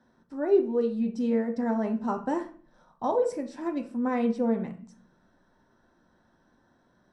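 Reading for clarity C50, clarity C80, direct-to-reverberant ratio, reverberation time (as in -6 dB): 11.0 dB, 16.5 dB, 3.0 dB, 0.45 s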